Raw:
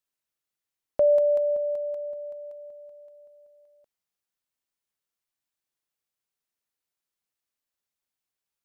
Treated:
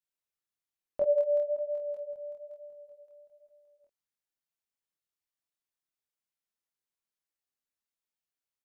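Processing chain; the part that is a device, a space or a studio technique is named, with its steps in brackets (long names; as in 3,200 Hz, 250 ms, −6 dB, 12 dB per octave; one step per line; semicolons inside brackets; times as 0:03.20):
0:01.03–0:01.80: bass and treble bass −11 dB, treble −4 dB
double-tracked vocal (double-tracking delay 26 ms −3.5 dB; chorus effect 1.1 Hz, delay 20 ms, depth 5.5 ms)
level −5 dB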